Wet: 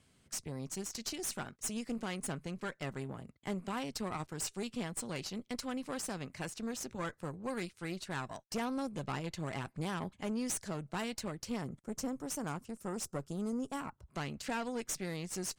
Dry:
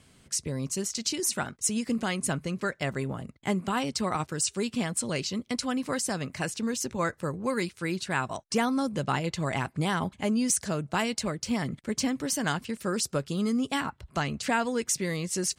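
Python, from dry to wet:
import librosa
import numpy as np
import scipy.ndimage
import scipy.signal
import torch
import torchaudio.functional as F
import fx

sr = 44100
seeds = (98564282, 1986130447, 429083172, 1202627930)

y = fx.band_shelf(x, sr, hz=2800.0, db=-10.5, octaves=1.7, at=(11.61, 14.1))
y = fx.tube_stage(y, sr, drive_db=24.0, bias=0.7)
y = y * 10.0 ** (-6.0 / 20.0)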